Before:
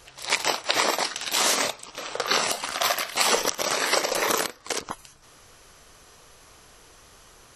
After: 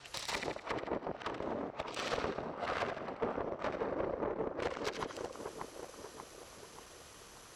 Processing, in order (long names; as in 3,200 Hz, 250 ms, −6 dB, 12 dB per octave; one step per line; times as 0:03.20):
reversed piece by piece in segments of 140 ms
treble cut that deepens with the level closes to 410 Hz, closed at −21.5 dBFS
echo with a time of its own for lows and highs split 1,300 Hz, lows 586 ms, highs 81 ms, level −6 dB
tube saturation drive 27 dB, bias 0.7
high-pass filter 45 Hz